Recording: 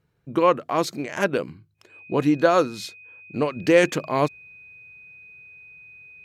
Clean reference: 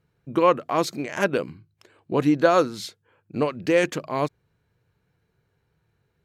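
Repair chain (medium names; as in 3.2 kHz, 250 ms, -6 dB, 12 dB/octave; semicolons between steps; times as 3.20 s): band-stop 2.5 kHz, Q 30; gain correction -3.5 dB, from 3.56 s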